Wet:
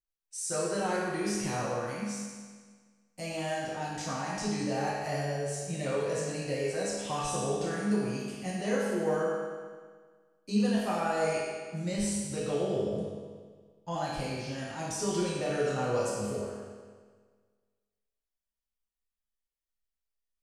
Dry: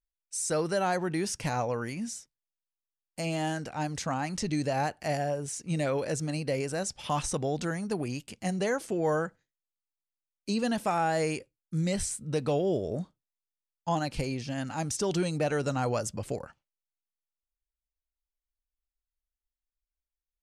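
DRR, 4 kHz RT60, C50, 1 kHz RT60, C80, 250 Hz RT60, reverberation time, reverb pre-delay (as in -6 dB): -7.5 dB, 1.5 s, -2.0 dB, 1.6 s, 0.5 dB, 1.6 s, 1.6 s, 4 ms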